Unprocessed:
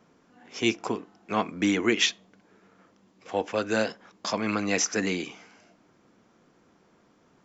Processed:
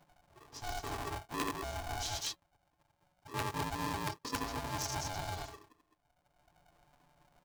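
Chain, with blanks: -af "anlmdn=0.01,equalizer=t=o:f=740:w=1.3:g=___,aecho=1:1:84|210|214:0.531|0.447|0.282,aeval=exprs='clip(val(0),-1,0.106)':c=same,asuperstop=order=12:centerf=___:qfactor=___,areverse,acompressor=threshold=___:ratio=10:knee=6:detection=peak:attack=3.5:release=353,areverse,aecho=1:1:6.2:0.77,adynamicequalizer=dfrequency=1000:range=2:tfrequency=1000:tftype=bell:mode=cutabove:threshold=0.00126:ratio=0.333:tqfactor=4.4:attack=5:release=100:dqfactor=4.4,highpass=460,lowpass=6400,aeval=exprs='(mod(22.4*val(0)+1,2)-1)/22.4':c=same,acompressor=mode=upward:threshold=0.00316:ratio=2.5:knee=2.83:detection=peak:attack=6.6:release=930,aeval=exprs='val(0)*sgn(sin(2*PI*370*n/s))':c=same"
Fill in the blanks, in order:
9.5, 1800, 0.6, 0.0251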